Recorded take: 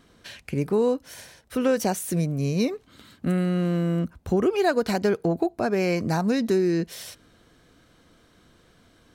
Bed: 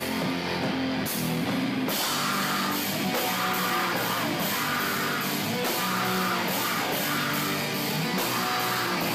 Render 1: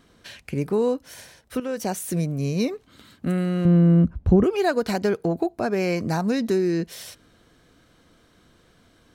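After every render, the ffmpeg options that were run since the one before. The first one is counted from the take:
-filter_complex "[0:a]asettb=1/sr,asplit=3[s0][s1][s2];[s0]atrim=end=3.654[s3];[s1]atrim=start=3.65:end=4.44,asetpts=PTS-STARTPTS,afade=t=in:d=0.004:c=qsin,afade=t=out:st=0.786:d=0.004:c=qsin,aemphasis=mode=reproduction:type=riaa[s4];[s2]atrim=start=4.436[s5];[s3][s4]acrossfade=d=0.004:c1=hsin:c2=qsin[s6];[s6][s5]acrossfade=d=0.004:c1=qsin:c2=hsin,asplit=2[s7][s8];[s7]atrim=end=1.6,asetpts=PTS-STARTPTS,afade=t=out:st=1.596:d=0.004:c=hsin:silence=0.251189[s9];[s8]atrim=start=1.6,asetpts=PTS-STARTPTS,afade=t=in:d=0.41:silence=0.251189[s10];[s9][s10]concat=n=2:v=0:a=1"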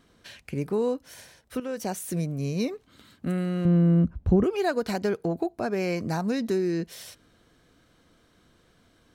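-af "volume=0.631"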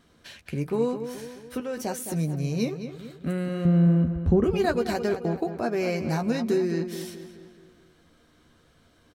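-filter_complex "[0:a]asplit=2[s0][s1];[s1]adelay=13,volume=0.398[s2];[s0][s2]amix=inputs=2:normalize=0,asplit=2[s3][s4];[s4]adelay=214,lowpass=f=3800:p=1,volume=0.335,asplit=2[s5][s6];[s6]adelay=214,lowpass=f=3800:p=1,volume=0.5,asplit=2[s7][s8];[s8]adelay=214,lowpass=f=3800:p=1,volume=0.5,asplit=2[s9][s10];[s10]adelay=214,lowpass=f=3800:p=1,volume=0.5,asplit=2[s11][s12];[s12]adelay=214,lowpass=f=3800:p=1,volume=0.5,asplit=2[s13][s14];[s14]adelay=214,lowpass=f=3800:p=1,volume=0.5[s15];[s3][s5][s7][s9][s11][s13][s15]amix=inputs=7:normalize=0"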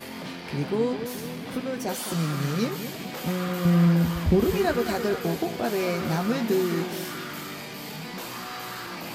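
-filter_complex "[1:a]volume=0.355[s0];[0:a][s0]amix=inputs=2:normalize=0"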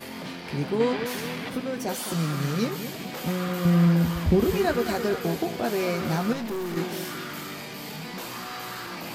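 -filter_complex "[0:a]asettb=1/sr,asplit=3[s0][s1][s2];[s0]atrim=end=0.804[s3];[s1]atrim=start=0.8:end=1.49,asetpts=PTS-STARTPTS,afade=t=in:d=0.004:c=qsin,afade=t=out:st=0.686:d=0.004:c=qsin,equalizer=f=1900:t=o:w=2.7:g=8.5[s4];[s2]atrim=start=1.486[s5];[s3][s4]acrossfade=d=0.004:c1=hsin:c2=qsin[s6];[s6][s5]acrossfade=d=0.004:c1=qsin:c2=hsin,asettb=1/sr,asplit=3[s7][s8][s9];[s7]atrim=end=6.334[s10];[s8]atrim=start=6.33:end=6.77,asetpts=PTS-STARTPTS,afade=t=in:d=0.004:c=qsin,afade=t=out:st=0.436:d=0.004:c=qsin,aeval=exprs='(tanh(25.1*val(0)+0.3)-tanh(0.3))/25.1':c=same[s11];[s9]atrim=start=6.766[s12];[s10][s11]acrossfade=d=0.004:c1=hsin:c2=qsin[s13];[s13][s12]acrossfade=d=0.004:c1=qsin:c2=hsin"

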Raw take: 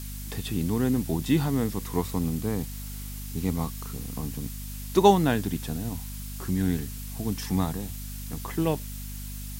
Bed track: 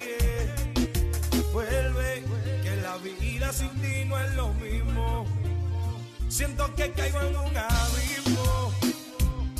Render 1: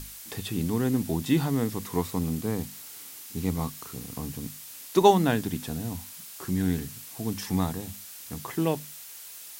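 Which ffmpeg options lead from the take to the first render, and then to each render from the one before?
-af "bandreject=f=50:t=h:w=6,bandreject=f=100:t=h:w=6,bandreject=f=150:t=h:w=6,bandreject=f=200:t=h:w=6,bandreject=f=250:t=h:w=6"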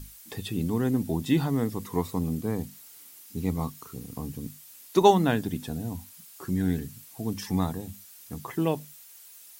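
-af "afftdn=nr=9:nf=-44"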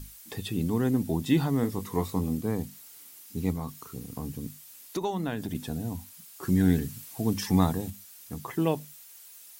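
-filter_complex "[0:a]asettb=1/sr,asplit=3[s0][s1][s2];[s0]atrim=end=1.614[s3];[s1]atrim=start=1.61:end=2.37,asetpts=PTS-STARTPTS,afade=t=in:d=0.004:c=qsin,afade=t=out:st=0.756:d=0.004:c=qsin,asplit=2[s4][s5];[s5]adelay=21,volume=0.398[s6];[s4][s6]amix=inputs=2:normalize=0,atrim=end_sample=33516[s7];[s2]atrim=start=2.366[s8];[s3][s7]acrossfade=d=0.004:c1=hsin:c2=qsin[s9];[s9][s8]acrossfade=d=0.004:c1=qsin:c2=hsin,asettb=1/sr,asplit=3[s10][s11][s12];[s10]atrim=end=3.514[s13];[s11]atrim=start=3.51:end=5.55,asetpts=PTS-STARTPTS,afade=t=in:d=0.004:c=qsin,afade=t=out:st=2.036:d=0.004:c=qsin,acompressor=threshold=0.0398:ratio=4:attack=3.2:release=140:knee=1:detection=peak[s14];[s12]atrim=start=5.546[s15];[s13][s14]acrossfade=d=0.004:c1=hsin:c2=qsin[s16];[s16][s15]acrossfade=d=0.004:c1=qsin:c2=hsin,asplit=3[s17][s18][s19];[s17]atrim=end=6.432[s20];[s18]atrim=start=6.428:end=7.902,asetpts=PTS-STARTPTS,volume=1.58[s21];[s19]atrim=start=7.898[s22];[s20][s21]acrossfade=d=0.004:c1=hsin:c2=hsin[s23];[s23][s22]acrossfade=d=0.004:c1=hsin:c2=hsin"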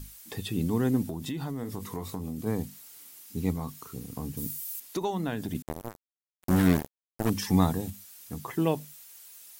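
-filter_complex "[0:a]asplit=3[s0][s1][s2];[s0]afade=t=out:st=1.06:d=0.02[s3];[s1]acompressor=threshold=0.0316:ratio=8:attack=3.2:release=140:knee=1:detection=peak,afade=t=in:st=1.06:d=0.02,afade=t=out:st=2.45:d=0.02[s4];[s2]afade=t=in:st=2.45:d=0.02[s5];[s3][s4][s5]amix=inputs=3:normalize=0,asettb=1/sr,asplit=3[s6][s7][s8];[s6]atrim=end=4.374[s9];[s7]atrim=start=4.37:end=4.8,asetpts=PTS-STARTPTS,afade=t=in:d=0.004:c=qsin,afade=t=out:st=0.426:d=0.004:c=qsin,aemphasis=mode=production:type=50kf[s10];[s8]atrim=start=4.796[s11];[s9][s10]acrossfade=d=0.004:c1=hsin:c2=qsin[s12];[s12][s11]acrossfade=d=0.004:c1=qsin:c2=hsin,asettb=1/sr,asplit=3[s13][s14][s15];[s13]atrim=end=5.624[s16];[s14]atrim=start=5.62:end=7.3,asetpts=PTS-STARTPTS,afade=t=in:d=0.004:c=qsin,afade=t=out:st=1.676:d=0.004:c=qsin,acrusher=bits=3:mix=0:aa=0.5[s17];[s15]atrim=start=7.296[s18];[s16][s17]acrossfade=d=0.004:c1=hsin:c2=qsin[s19];[s19][s18]acrossfade=d=0.004:c1=qsin:c2=hsin"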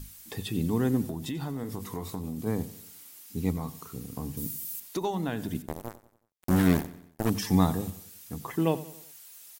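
-af "aecho=1:1:92|184|276|368:0.141|0.0664|0.0312|0.0147"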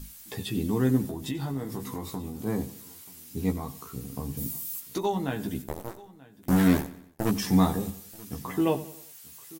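-filter_complex "[0:a]asplit=2[s0][s1];[s1]adelay=15,volume=0.596[s2];[s0][s2]amix=inputs=2:normalize=0,aecho=1:1:934:0.0841"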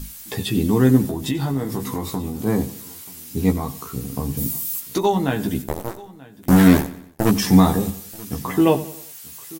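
-af "volume=2.82,alimiter=limit=0.794:level=0:latency=1"

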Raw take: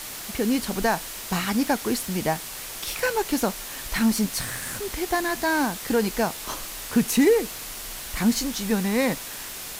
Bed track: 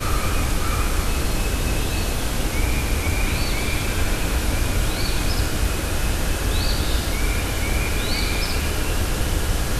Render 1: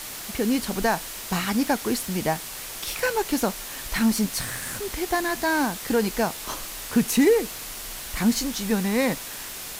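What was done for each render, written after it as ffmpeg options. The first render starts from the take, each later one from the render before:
-af anull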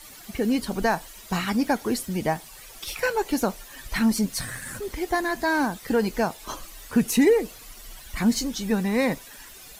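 -af "afftdn=nr=13:nf=-36"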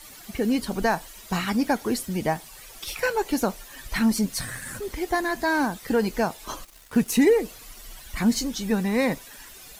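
-filter_complex "[0:a]asettb=1/sr,asplit=3[s0][s1][s2];[s0]atrim=end=6.634[s3];[s1]atrim=start=6.63:end=7.16,asetpts=PTS-STARTPTS,afade=t=in:d=0.004:c=qsin,afade=t=out:st=0.526:d=0.004:c=qsin,aeval=exprs='sgn(val(0))*max(abs(val(0))-0.0075,0)':c=same[s4];[s2]atrim=start=7.156[s5];[s3][s4]acrossfade=d=0.004:c1=hsin:c2=qsin[s6];[s6][s5]acrossfade=d=0.004:c1=qsin:c2=hsin"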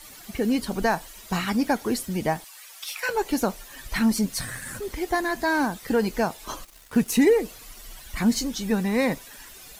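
-filter_complex "[0:a]asettb=1/sr,asplit=3[s0][s1][s2];[s0]atrim=end=2.444[s3];[s1]atrim=start=2.44:end=3.09,asetpts=PTS-STARTPTS,afade=t=in:d=0.004:c=qsin,afade=t=out:st=0.646:d=0.004:c=qsin,highpass=980[s4];[s2]atrim=start=3.086[s5];[s3][s4]acrossfade=d=0.004:c1=hsin:c2=qsin[s6];[s6][s5]acrossfade=d=0.004:c1=qsin:c2=hsin"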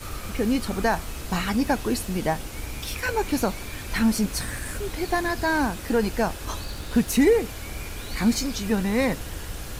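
-filter_complex "[1:a]volume=0.224[s0];[0:a][s0]amix=inputs=2:normalize=0"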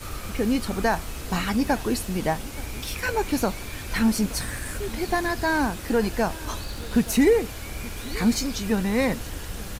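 -af "aecho=1:1:875:0.0944"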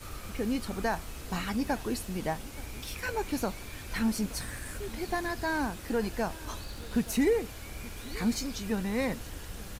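-af "volume=0.422"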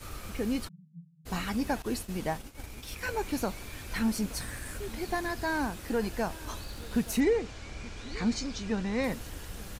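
-filter_complex "[0:a]asplit=3[s0][s1][s2];[s0]afade=t=out:st=0.67:d=0.02[s3];[s1]asuperpass=centerf=160:order=8:qfactor=4.8,afade=t=in:st=0.67:d=0.02,afade=t=out:st=1.25:d=0.02[s4];[s2]afade=t=in:st=1.25:d=0.02[s5];[s3][s4][s5]amix=inputs=3:normalize=0,asettb=1/sr,asplit=3[s6][s7][s8];[s6]atrim=end=1.824[s9];[s7]atrim=start=1.82:end=3.01,asetpts=PTS-STARTPTS,afade=t=in:d=0.004:c=qsin,afade=t=out:st=1.186:d=0.004:c=qsin,agate=range=0.0224:threshold=0.0141:ratio=3:release=100:detection=peak[s10];[s8]atrim=start=3.006[s11];[s9][s10]acrossfade=d=0.004:c1=hsin:c2=qsin[s12];[s12][s11]acrossfade=d=0.004:c1=qsin:c2=hsin,asettb=1/sr,asplit=3[s13][s14][s15];[s13]atrim=end=7.204[s16];[s14]atrim=start=7.2:end=9.04,asetpts=PTS-STARTPTS,afade=t=in:d=0.004:c=qsin,afade=t=out:st=1.836:d=0.004:c=qsin,lowpass=f=7000:w=0.5412,lowpass=f=7000:w=1.3066[s17];[s15]atrim=start=9.036[s18];[s16][s17]acrossfade=d=0.004:c1=hsin:c2=qsin[s19];[s19][s18]acrossfade=d=0.004:c1=qsin:c2=hsin"

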